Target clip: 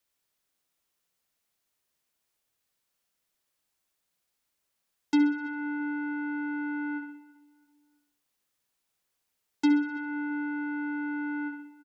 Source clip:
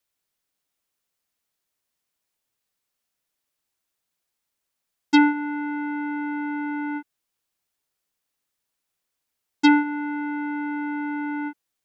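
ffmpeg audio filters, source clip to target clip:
ffmpeg -i in.wav -filter_complex "[0:a]asplit=2[link_01][link_02];[link_02]aecho=0:1:62|124|186|248|310:0.398|0.179|0.0806|0.0363|0.0163[link_03];[link_01][link_03]amix=inputs=2:normalize=0,acrossover=split=250[link_04][link_05];[link_05]acompressor=threshold=-34dB:ratio=4[link_06];[link_04][link_06]amix=inputs=2:normalize=0,asplit=2[link_07][link_08];[link_08]adelay=332,lowpass=frequency=1900:poles=1,volume=-18.5dB,asplit=2[link_09][link_10];[link_10]adelay=332,lowpass=frequency=1900:poles=1,volume=0.35,asplit=2[link_11][link_12];[link_12]adelay=332,lowpass=frequency=1900:poles=1,volume=0.35[link_13];[link_09][link_11][link_13]amix=inputs=3:normalize=0[link_14];[link_07][link_14]amix=inputs=2:normalize=0" out.wav

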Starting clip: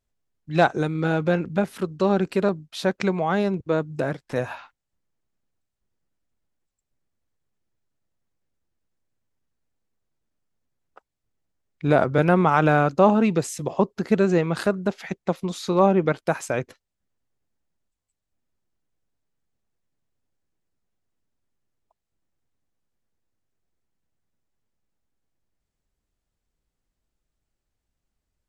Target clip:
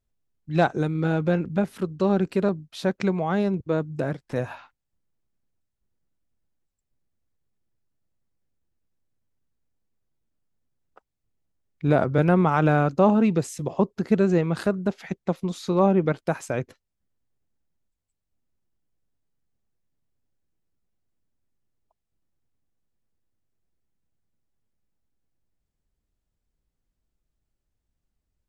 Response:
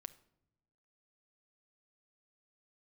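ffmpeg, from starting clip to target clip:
-af "lowshelf=frequency=370:gain=6.5,volume=-4.5dB"

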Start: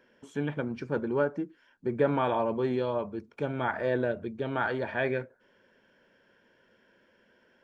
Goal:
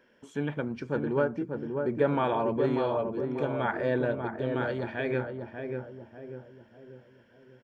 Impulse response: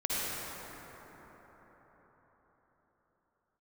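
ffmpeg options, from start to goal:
-filter_complex "[0:a]asettb=1/sr,asplit=3[link_01][link_02][link_03];[link_01]atrim=end=4.274[link_04];[link_02]atrim=start=4.27:end=5.1,asetpts=PTS-STARTPTS,afade=type=in:duration=0.004:curve=qsin,afade=type=out:start_time=0.826:duration=0.004:curve=qsin,equalizer=frequency=1000:width=0.66:gain=-6.5[link_05];[link_03]atrim=start=5.096[link_06];[link_04][link_05]acrossfade=duration=0.004:curve1=hsin:curve2=qsin[link_07];[link_07][link_06]acrossfade=duration=0.004:curve1=qsin:curve2=hsin,asplit=2[link_08][link_09];[link_09]adelay=591,lowpass=frequency=1000:poles=1,volume=-4dB,asplit=2[link_10][link_11];[link_11]adelay=591,lowpass=frequency=1000:poles=1,volume=0.48,asplit=2[link_12][link_13];[link_13]adelay=591,lowpass=frequency=1000:poles=1,volume=0.48,asplit=2[link_14][link_15];[link_15]adelay=591,lowpass=frequency=1000:poles=1,volume=0.48,asplit=2[link_16][link_17];[link_17]adelay=591,lowpass=frequency=1000:poles=1,volume=0.48,asplit=2[link_18][link_19];[link_19]adelay=591,lowpass=frequency=1000:poles=1,volume=0.48[link_20];[link_10][link_12][link_14][link_16][link_18][link_20]amix=inputs=6:normalize=0[link_21];[link_08][link_21]amix=inputs=2:normalize=0"

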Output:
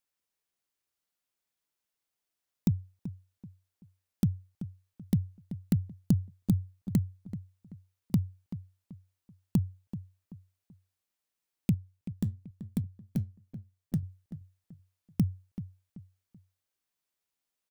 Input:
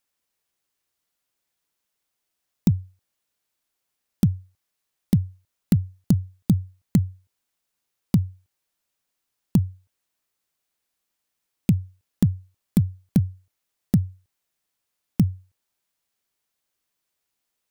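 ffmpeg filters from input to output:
ffmpeg -i in.wav -filter_complex "[0:a]asettb=1/sr,asplit=3[link_01][link_02][link_03];[link_01]atrim=end=11.744[link_04];[link_02]atrim=start=11.74:end=14.03,asetpts=PTS-STARTPTS,afade=type=in:duration=0.004:curve=qsin,afade=type=out:start_time=2.286:duration=0.004:curve=qsin,flanger=delay=4.1:depth=5.4:regen=74:speed=1:shape=sinusoidal[link_05];[link_03]atrim=start=14.026[link_06];[link_04][link_05]acrossfade=duration=0.004:curve1=hsin:curve2=qsin[link_07];[link_07][link_06]acrossfade=duration=0.004:curve1=qsin:curve2=hsin,asplit=2[link_08][link_09];[link_09]adelay=383,lowpass=frequency=2000:poles=1,volume=-12.5dB,asplit=2[link_10][link_11];[link_11]adelay=383,lowpass=frequency=2000:poles=1,volume=0.34,asplit=2[link_12][link_13];[link_13]adelay=383,lowpass=frequency=2000:poles=1,volume=0.34[link_14];[link_08][link_10][link_12][link_14]amix=inputs=4:normalize=0,volume=-7.5dB" out.wav

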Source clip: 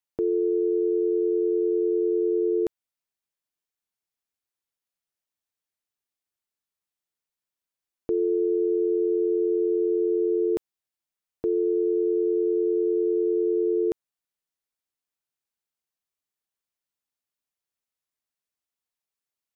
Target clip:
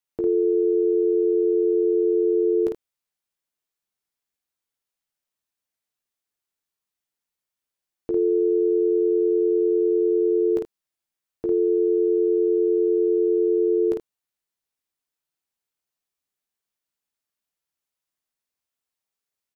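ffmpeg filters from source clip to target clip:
ffmpeg -i in.wav -af "aecho=1:1:15|52|79:0.422|0.708|0.237" out.wav

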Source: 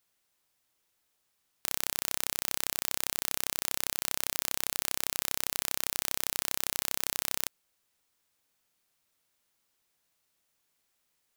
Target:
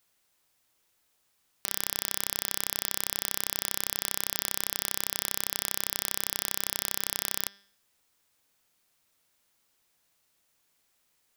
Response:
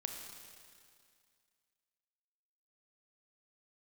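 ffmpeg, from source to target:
-af "bandreject=frequency=198.8:width_type=h:width=4,bandreject=frequency=397.6:width_type=h:width=4,bandreject=frequency=596.4:width_type=h:width=4,bandreject=frequency=795.2:width_type=h:width=4,bandreject=frequency=994:width_type=h:width=4,bandreject=frequency=1192.8:width_type=h:width=4,bandreject=frequency=1391.6:width_type=h:width=4,bandreject=frequency=1590.4:width_type=h:width=4,bandreject=frequency=1789.2:width_type=h:width=4,bandreject=frequency=1988:width_type=h:width=4,bandreject=frequency=2186.8:width_type=h:width=4,bandreject=frequency=2385.6:width_type=h:width=4,bandreject=frequency=2584.4:width_type=h:width=4,bandreject=frequency=2783.2:width_type=h:width=4,bandreject=frequency=2982:width_type=h:width=4,bandreject=frequency=3180.8:width_type=h:width=4,bandreject=frequency=3379.6:width_type=h:width=4,bandreject=frequency=3578.4:width_type=h:width=4,bandreject=frequency=3777.2:width_type=h:width=4,bandreject=frequency=3976:width_type=h:width=4,bandreject=frequency=4174.8:width_type=h:width=4,bandreject=frequency=4373.6:width_type=h:width=4,bandreject=frequency=4572.4:width_type=h:width=4,bandreject=frequency=4771.2:width_type=h:width=4,bandreject=frequency=4970:width_type=h:width=4,bandreject=frequency=5168.8:width_type=h:width=4,bandreject=frequency=5367.6:width_type=h:width=4,bandreject=frequency=5566.4:width_type=h:width=4,bandreject=frequency=5765.2:width_type=h:width=4,bandreject=frequency=5964:width_type=h:width=4,alimiter=limit=-6dB:level=0:latency=1:release=90,volume=4.5dB"

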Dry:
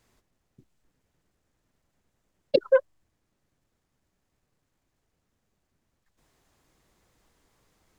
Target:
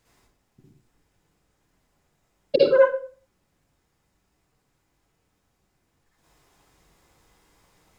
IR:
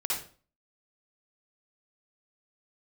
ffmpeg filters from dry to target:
-filter_complex "[1:a]atrim=start_sample=2205[link_01];[0:a][link_01]afir=irnorm=-1:irlink=0,volume=1dB"

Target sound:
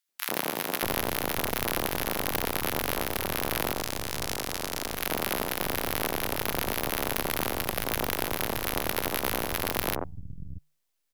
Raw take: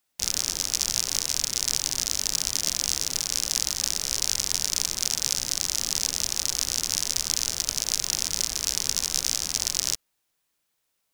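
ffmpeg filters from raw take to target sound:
ffmpeg -i in.wav -filter_complex "[0:a]asettb=1/sr,asplit=3[link_01][link_02][link_03];[link_01]atrim=end=3.734[link_04];[link_02]atrim=start=3.73:end=4.94,asetpts=PTS-STARTPTS,afade=type=in:duration=0.004:curve=qsin,afade=type=out:start_time=1.206:duration=0.004:curve=qsin,aeval=exprs='(tanh(2.82*val(0)+0.7)-tanh(0.7))/2.82':channel_layout=same[link_05];[link_03]atrim=start=4.936[link_06];[link_04][link_05]acrossfade=duration=0.004:curve1=hsin:curve2=qsin[link_07];[link_07][link_06]acrossfade=duration=0.004:curve1=qsin:curve2=hsin,bandreject=frequency=148.7:width_type=h:width=4,bandreject=frequency=297.4:width_type=h:width=4,bandreject=frequency=446.1:width_type=h:width=4,bandreject=frequency=594.8:width_type=h:width=4,bandreject=frequency=743.5:width_type=h:width=4,bandreject=frequency=892.2:width_type=h:width=4,aeval=exprs='abs(val(0))':channel_layout=same,acrossover=split=160|1200[link_08][link_09][link_10];[link_09]adelay=90[link_11];[link_08]adelay=630[link_12];[link_12][link_11][link_10]amix=inputs=3:normalize=0,volume=-1.5dB" out.wav

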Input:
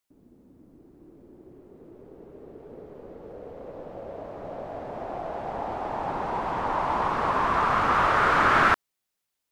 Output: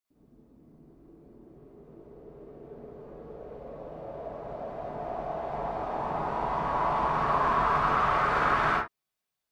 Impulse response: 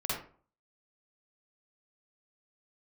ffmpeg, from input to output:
-filter_complex "[0:a]alimiter=limit=-16dB:level=0:latency=1:release=21[link_01];[1:a]atrim=start_sample=2205,afade=type=out:start_time=0.18:duration=0.01,atrim=end_sample=8379[link_02];[link_01][link_02]afir=irnorm=-1:irlink=0,volume=-7.5dB"

